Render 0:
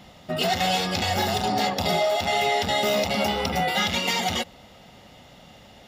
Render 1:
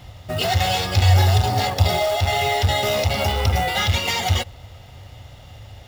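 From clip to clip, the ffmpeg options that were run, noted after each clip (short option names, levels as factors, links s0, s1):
-af "acrusher=bits=4:mode=log:mix=0:aa=0.000001,lowshelf=f=140:t=q:w=3:g=10.5,volume=1.26"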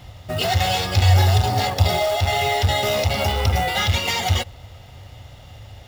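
-af anull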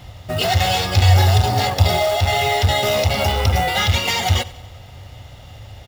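-af "aecho=1:1:93|186|279|372:0.106|0.0561|0.0298|0.0158,volume=1.33"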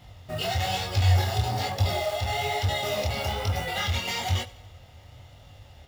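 -af "flanger=delay=19.5:depth=7.2:speed=1.1,volume=0.447"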